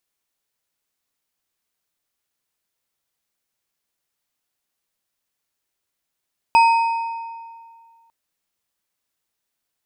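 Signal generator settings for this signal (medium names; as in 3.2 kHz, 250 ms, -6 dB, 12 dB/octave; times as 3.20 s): metal hit bar, lowest mode 918 Hz, modes 4, decay 2.00 s, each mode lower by 9.5 dB, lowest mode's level -8.5 dB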